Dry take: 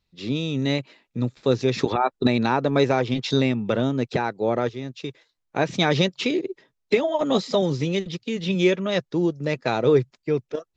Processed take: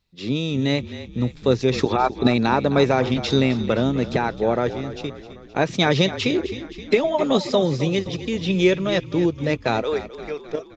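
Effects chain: 9.82–10.45 Bessel high-pass 810 Hz, order 2; frequency-shifting echo 0.261 s, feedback 58%, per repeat -35 Hz, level -13.5 dB; gain +2 dB

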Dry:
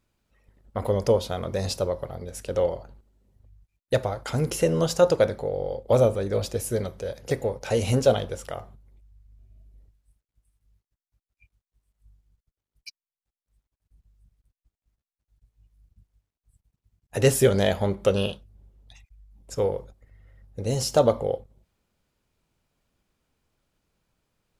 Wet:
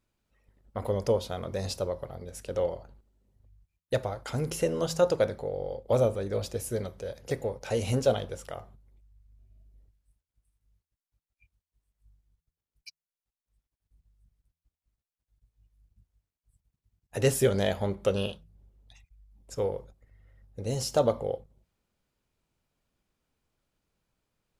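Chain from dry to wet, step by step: de-hum 80.7 Hz, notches 2; gain -5 dB

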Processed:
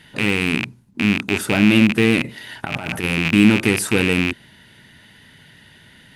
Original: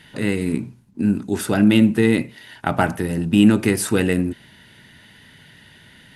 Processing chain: rattling part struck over -28 dBFS, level -8 dBFS; 2.24–3.04 negative-ratio compressor -26 dBFS, ratio -1

